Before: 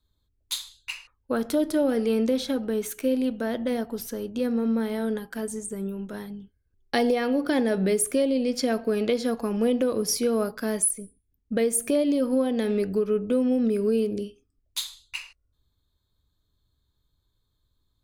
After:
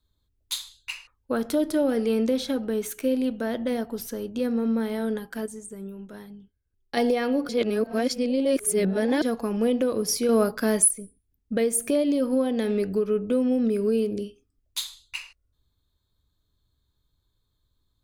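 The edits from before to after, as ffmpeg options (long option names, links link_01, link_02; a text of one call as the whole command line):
ffmpeg -i in.wav -filter_complex "[0:a]asplit=7[link_01][link_02][link_03][link_04][link_05][link_06][link_07];[link_01]atrim=end=5.462[link_08];[link_02]atrim=start=5.458:end=6.972,asetpts=PTS-STARTPTS,volume=-6dB[link_09];[link_03]atrim=start=6.968:end=7.492[link_10];[link_04]atrim=start=7.488:end=9.222,asetpts=PTS-STARTPTS,areverse[link_11];[link_05]atrim=start=9.218:end=10.292[link_12];[link_06]atrim=start=10.288:end=10.882,asetpts=PTS-STARTPTS,volume=4.5dB[link_13];[link_07]atrim=start=10.878[link_14];[link_08][link_09]acrossfade=duration=0.004:curve1=hsin:curve2=hsin[link_15];[link_15][link_10]acrossfade=duration=0.004:curve1=hsin:curve2=hsin[link_16];[link_16][link_11]acrossfade=duration=0.004:curve1=hsin:curve2=hsin[link_17];[link_17][link_12]acrossfade=duration=0.004:curve1=hsin:curve2=hsin[link_18];[link_18][link_13]acrossfade=duration=0.004:curve1=hsin:curve2=hsin[link_19];[link_19][link_14]acrossfade=duration=0.004:curve1=hsin:curve2=hsin" out.wav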